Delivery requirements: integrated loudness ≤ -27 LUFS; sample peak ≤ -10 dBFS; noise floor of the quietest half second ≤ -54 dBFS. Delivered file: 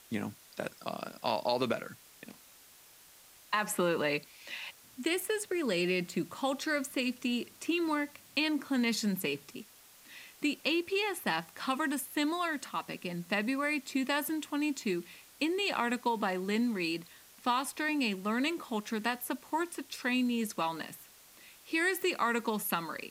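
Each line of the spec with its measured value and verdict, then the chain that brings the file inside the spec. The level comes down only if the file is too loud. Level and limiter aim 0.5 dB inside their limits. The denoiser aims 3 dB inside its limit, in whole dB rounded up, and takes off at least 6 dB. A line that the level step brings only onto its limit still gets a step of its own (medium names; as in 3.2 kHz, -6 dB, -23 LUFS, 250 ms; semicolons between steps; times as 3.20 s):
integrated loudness -33.0 LUFS: pass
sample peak -15.0 dBFS: pass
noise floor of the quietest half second -58 dBFS: pass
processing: none needed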